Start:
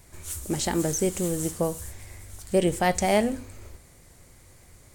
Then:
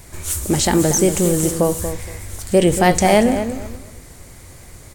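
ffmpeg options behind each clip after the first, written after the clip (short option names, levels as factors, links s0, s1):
-filter_complex "[0:a]asplit=2[s0][s1];[s1]alimiter=limit=0.0794:level=0:latency=1:release=17,volume=1.06[s2];[s0][s2]amix=inputs=2:normalize=0,asplit=2[s3][s4];[s4]adelay=234,lowpass=f=2000:p=1,volume=0.355,asplit=2[s5][s6];[s6]adelay=234,lowpass=f=2000:p=1,volume=0.24,asplit=2[s7][s8];[s8]adelay=234,lowpass=f=2000:p=1,volume=0.24[s9];[s3][s5][s7][s9]amix=inputs=4:normalize=0,volume=1.88"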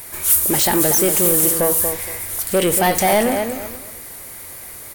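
-filter_complex "[0:a]asplit=2[s0][s1];[s1]highpass=f=720:p=1,volume=8.91,asoftclip=type=tanh:threshold=0.891[s2];[s0][s2]amix=inputs=2:normalize=0,lowpass=f=5600:p=1,volume=0.501,aexciter=amount=9.2:drive=2.3:freq=10000,volume=0.447"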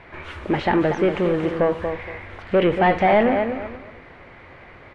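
-af "lowpass=f=2600:w=0.5412,lowpass=f=2600:w=1.3066"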